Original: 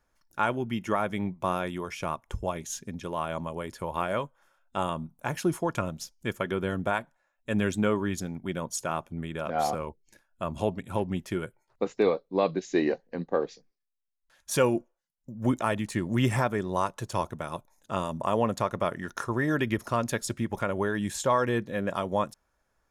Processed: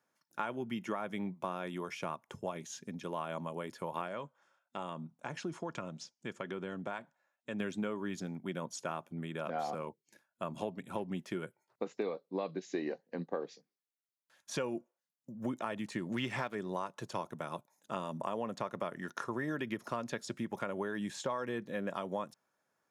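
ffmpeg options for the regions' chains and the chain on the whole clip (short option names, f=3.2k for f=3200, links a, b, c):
-filter_complex "[0:a]asettb=1/sr,asplit=3[a][b][c];[a]atrim=end=4.084[d];[b]atrim=start=4.08:end=7.6,asetpts=PTS-STARTPTS,afade=t=in:d=0.004:c=qsin,afade=t=out:st=3.516:d=0.004:c=qsin,lowpass=f=7.9k:w=0.5412,lowpass=f=7.9k:w=1.3066,acompressor=threshold=-34dB:ratio=2:attack=3.2:release=140:knee=1:detection=peak[e];[c]atrim=start=7.596[f];[d][e]acrossfade=d=0.004:c1=hsin:c2=qsin[g];[g][f]acrossfade=d=0.004:c1=qsin:c2=hsin,asettb=1/sr,asplit=3[h][i][j];[h]atrim=end=16.124[k];[i]atrim=start=16.12:end=16.55,asetpts=PTS-STARTPTS,afade=t=in:d=0.004:c=qsin,afade=t=out:st=0.426:d=0.004:c=qsin,equalizer=f=3.1k:t=o:w=2.2:g=7.5,aeval=exprs='sgn(val(0))*max(abs(val(0))-0.00794,0)':c=same[l];[j]atrim=start=16.546[m];[k][l]acrossfade=d=0.004:c1=hsin:c2=qsin[n];[n][m]acrossfade=d=0.004:c1=qsin:c2=hsin,acrossover=split=6200[o][p];[p]acompressor=threshold=-55dB:ratio=4:attack=1:release=60[q];[o][q]amix=inputs=2:normalize=0,highpass=f=140:w=0.5412,highpass=f=140:w=1.3066,acompressor=threshold=-28dB:ratio=6,volume=-4.5dB"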